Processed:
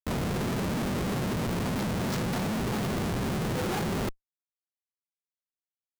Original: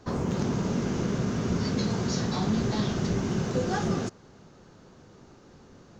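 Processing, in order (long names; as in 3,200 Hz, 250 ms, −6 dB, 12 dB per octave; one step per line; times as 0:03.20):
comparator with hysteresis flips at −33 dBFS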